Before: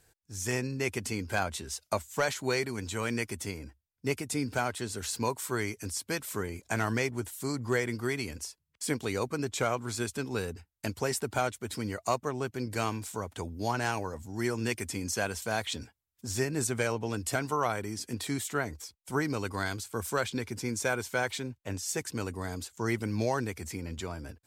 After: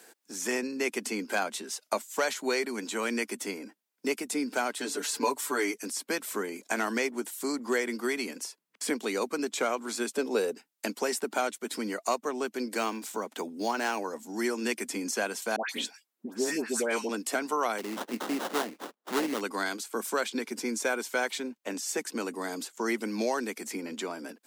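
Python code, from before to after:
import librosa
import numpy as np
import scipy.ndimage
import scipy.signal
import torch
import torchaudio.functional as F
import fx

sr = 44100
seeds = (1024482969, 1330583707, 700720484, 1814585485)

y = fx.comb(x, sr, ms=6.9, depth=0.98, at=(4.8, 5.74))
y = fx.peak_eq(y, sr, hz=530.0, db=10.0, octaves=1.0, at=(10.11, 10.55))
y = fx.resample_linear(y, sr, factor=2, at=(12.77, 13.99))
y = fx.dispersion(y, sr, late='highs', ms=134.0, hz=1400.0, at=(15.56, 17.09))
y = fx.sample_hold(y, sr, seeds[0], rate_hz=2400.0, jitter_pct=20, at=(17.78, 19.41))
y = scipy.signal.sosfilt(scipy.signal.butter(8, 210.0, 'highpass', fs=sr, output='sos'), y)
y = fx.band_squash(y, sr, depth_pct=40)
y = y * librosa.db_to_amplitude(1.5)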